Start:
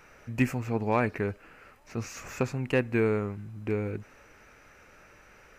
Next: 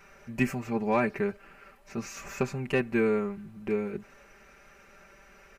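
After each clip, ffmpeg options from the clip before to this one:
-af "aecho=1:1:5.1:0.91,volume=-2.5dB"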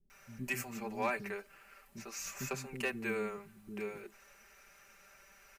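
-filter_complex "[0:a]acrossover=split=570[a][b];[a]flanger=delay=2.3:depth=8.5:regen=60:speed=1.1:shape=triangular[c];[b]crystalizer=i=2.5:c=0[d];[c][d]amix=inputs=2:normalize=0,acrossover=split=290[e][f];[f]adelay=100[g];[e][g]amix=inputs=2:normalize=0,volume=-7dB"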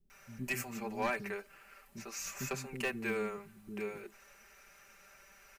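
-af "aeval=exprs='clip(val(0),-1,0.0282)':c=same,volume=1dB"

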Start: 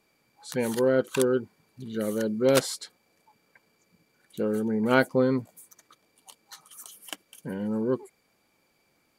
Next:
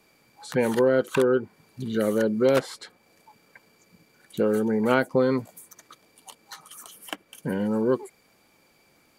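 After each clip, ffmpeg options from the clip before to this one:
-filter_complex "[0:a]acrossover=split=420|2700[a][b][c];[a]acompressor=threshold=-33dB:ratio=4[d];[b]acompressor=threshold=-28dB:ratio=4[e];[c]acompressor=threshold=-51dB:ratio=4[f];[d][e][f]amix=inputs=3:normalize=0,volume=7.5dB"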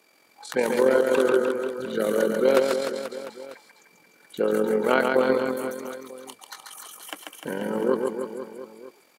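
-af "highpass=320,tremolo=f=44:d=0.571,aecho=1:1:140|301|486.2|699.1|943.9:0.631|0.398|0.251|0.158|0.1,volume=3.5dB"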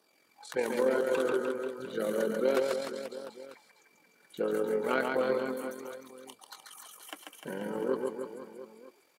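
-filter_complex "[0:a]asplit=2[a][b];[b]asoftclip=type=hard:threshold=-15dB,volume=-10.5dB[c];[a][c]amix=inputs=2:normalize=0,flanger=delay=0.2:depth=7:regen=-46:speed=0.31:shape=sinusoidal,volume=-6dB"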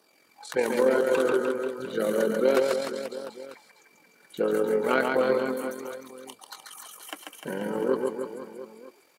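-af "bandreject=f=3.4k:w=28,volume=5.5dB"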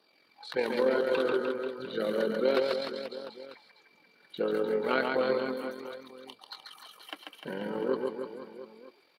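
-af "highshelf=f=5.4k:t=q:w=3:g=-9,volume=-4.5dB"

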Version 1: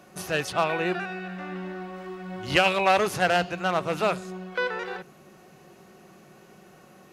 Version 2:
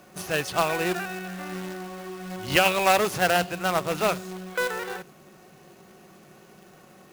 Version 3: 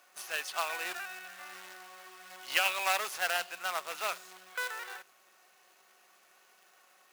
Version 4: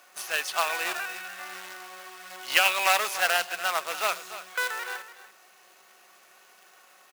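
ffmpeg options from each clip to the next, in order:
-af "acrusher=bits=2:mode=log:mix=0:aa=0.000001"
-af "highpass=1k,volume=-6dB"
-af "aecho=1:1:289:0.211,volume=7dB"

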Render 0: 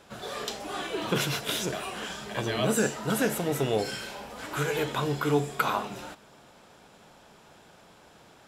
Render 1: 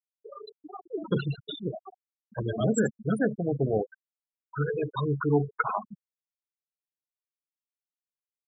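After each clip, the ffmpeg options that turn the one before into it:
-af "afftfilt=real='re*gte(hypot(re,im),0.112)':imag='im*gte(hypot(re,im),0.112)':win_size=1024:overlap=0.75,bass=f=250:g=4,treble=f=4k:g=4"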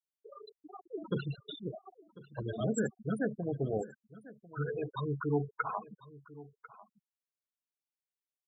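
-af "aecho=1:1:1046:0.112,volume=-7dB"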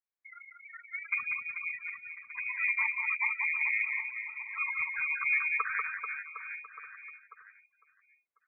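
-af "lowpass=f=2.2k:t=q:w=0.5098,lowpass=f=2.2k:t=q:w=0.6013,lowpass=f=2.2k:t=q:w=0.9,lowpass=f=2.2k:t=q:w=2.563,afreqshift=-2600,aecho=1:1:190|437|758.1|1176|1718:0.631|0.398|0.251|0.158|0.1,volume=1dB"

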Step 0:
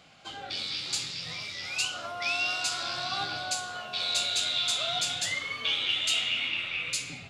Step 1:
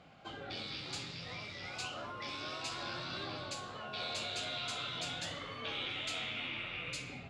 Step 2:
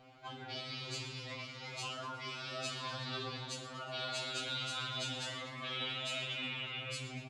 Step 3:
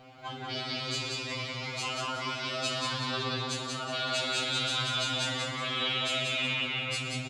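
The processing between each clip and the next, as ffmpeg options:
-af "lowpass=f=1k:p=1,afftfilt=real='re*lt(hypot(re,im),0.0447)':imag='im*lt(hypot(re,im),0.0447)':win_size=1024:overlap=0.75,volume=1.5dB"
-filter_complex "[0:a]asplit=7[a][b][c][d][e][f][g];[b]adelay=120,afreqshift=86,volume=-13dB[h];[c]adelay=240,afreqshift=172,volume=-17.9dB[i];[d]adelay=360,afreqshift=258,volume=-22.8dB[j];[e]adelay=480,afreqshift=344,volume=-27.6dB[k];[f]adelay=600,afreqshift=430,volume=-32.5dB[l];[g]adelay=720,afreqshift=516,volume=-37.4dB[m];[a][h][i][j][k][l][m]amix=inputs=7:normalize=0,afftfilt=real='re*2.45*eq(mod(b,6),0)':imag='im*2.45*eq(mod(b,6),0)':win_size=2048:overlap=0.75,volume=2dB"
-af "aecho=1:1:184|368|552|736|920:0.708|0.262|0.0969|0.0359|0.0133,volume=7dB"

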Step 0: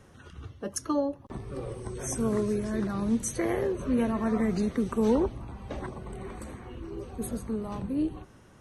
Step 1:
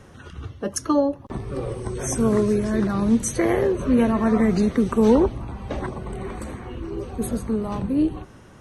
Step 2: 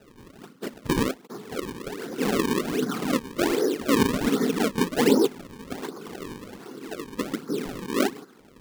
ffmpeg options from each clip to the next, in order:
-af "highshelf=f=8.1k:g=-4.5,volume=8dB"
-af "afftfilt=real='hypot(re,im)*cos(2*PI*random(0))':imag='hypot(re,im)*sin(2*PI*random(1))':win_size=512:overlap=0.75,highpass=f=190:w=0.5412,highpass=f=190:w=1.3066,equalizer=f=260:t=q:w=4:g=4,equalizer=f=420:t=q:w=4:g=6,equalizer=f=620:t=q:w=4:g=-7,equalizer=f=1.4k:t=q:w=4:g=8,equalizer=f=2.5k:t=q:w=4:g=-5,lowpass=f=3.3k:w=0.5412,lowpass=f=3.3k:w=1.3066,acrusher=samples=37:mix=1:aa=0.000001:lfo=1:lforange=59.2:lforate=1.3"

